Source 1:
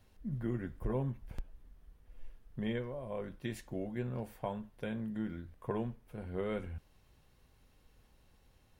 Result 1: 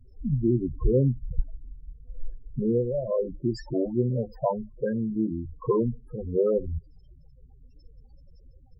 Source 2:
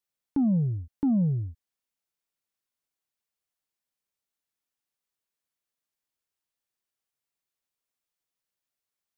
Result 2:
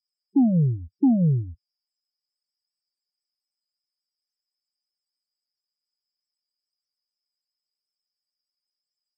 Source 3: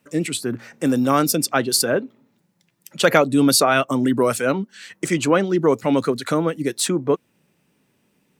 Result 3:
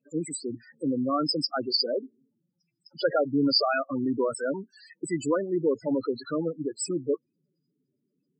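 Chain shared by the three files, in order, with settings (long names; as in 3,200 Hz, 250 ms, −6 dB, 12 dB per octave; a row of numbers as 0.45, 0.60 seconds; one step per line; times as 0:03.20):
thirty-one-band graphic EQ 100 Hz −10 dB, 200 Hz −8 dB, 5,000 Hz +12 dB, 8,000 Hz +7 dB
spectral peaks only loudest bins 8
normalise the peak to −12 dBFS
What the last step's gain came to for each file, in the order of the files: +15.5, +8.0, −7.0 decibels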